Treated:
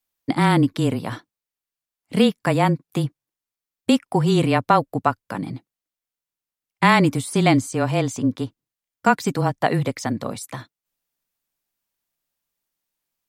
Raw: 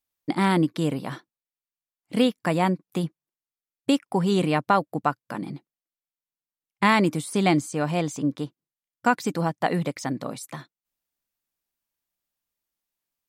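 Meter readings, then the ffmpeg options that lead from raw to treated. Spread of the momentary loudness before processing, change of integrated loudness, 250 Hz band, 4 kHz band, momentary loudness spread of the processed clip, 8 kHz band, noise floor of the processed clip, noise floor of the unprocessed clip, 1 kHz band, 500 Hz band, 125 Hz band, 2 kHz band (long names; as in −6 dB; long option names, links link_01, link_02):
14 LU, +4.0 dB, +3.5 dB, +4.0 dB, 14 LU, +4.0 dB, below −85 dBFS, below −85 dBFS, +4.0 dB, +3.5 dB, +6.5 dB, +4.0 dB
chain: -af "afreqshift=-21,volume=4dB"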